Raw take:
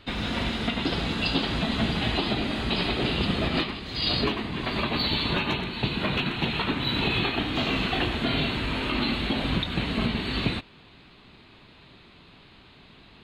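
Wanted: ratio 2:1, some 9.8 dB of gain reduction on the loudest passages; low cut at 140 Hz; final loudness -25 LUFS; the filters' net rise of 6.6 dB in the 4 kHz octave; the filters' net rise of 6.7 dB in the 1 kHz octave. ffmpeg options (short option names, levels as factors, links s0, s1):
-af "highpass=140,equalizer=f=1000:t=o:g=8,equalizer=f=4000:t=o:g=7.5,acompressor=threshold=0.0158:ratio=2,volume=2"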